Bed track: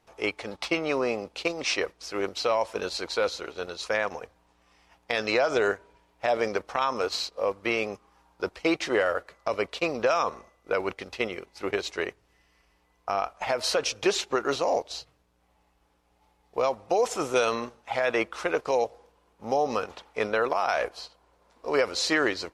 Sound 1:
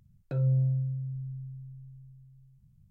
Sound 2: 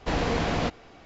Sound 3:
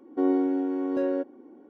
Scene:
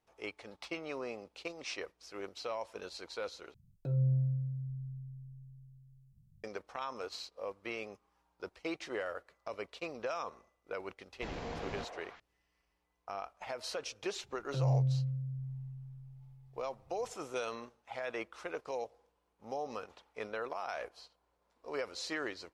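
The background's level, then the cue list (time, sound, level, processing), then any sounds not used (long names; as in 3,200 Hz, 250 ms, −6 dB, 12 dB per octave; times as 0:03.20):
bed track −14 dB
0:03.54: overwrite with 1 −4 dB + parametric band 1,800 Hz −10.5 dB 1.7 octaves
0:11.15: mix in 2 −16.5 dB + echo through a band-pass that steps 156 ms, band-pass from 630 Hz, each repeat 0.7 octaves, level −1.5 dB
0:14.23: mix in 1 −4 dB
not used: 3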